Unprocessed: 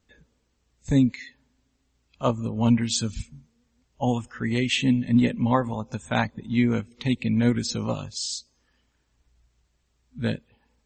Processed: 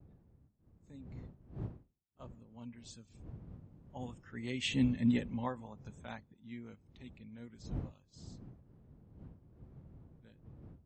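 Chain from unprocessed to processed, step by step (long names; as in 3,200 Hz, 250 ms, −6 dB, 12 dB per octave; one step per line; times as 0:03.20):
source passing by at 0:04.93, 6 m/s, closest 1.3 metres
wind on the microphone 120 Hz −39 dBFS
high-pass filter 90 Hz 6 dB per octave
downward expander −56 dBFS
level −7.5 dB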